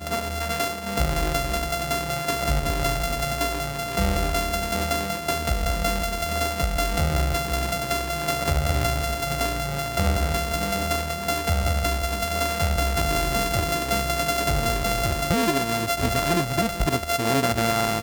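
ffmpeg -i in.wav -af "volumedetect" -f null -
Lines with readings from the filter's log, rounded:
mean_volume: -24.0 dB
max_volume: -9.9 dB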